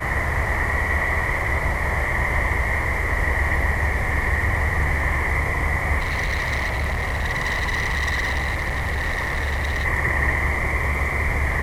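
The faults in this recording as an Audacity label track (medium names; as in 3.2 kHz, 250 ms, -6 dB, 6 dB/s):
5.990000	9.860000	clipped -20 dBFS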